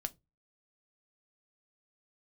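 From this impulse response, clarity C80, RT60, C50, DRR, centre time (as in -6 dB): 34.5 dB, 0.20 s, 26.0 dB, 9.0 dB, 2 ms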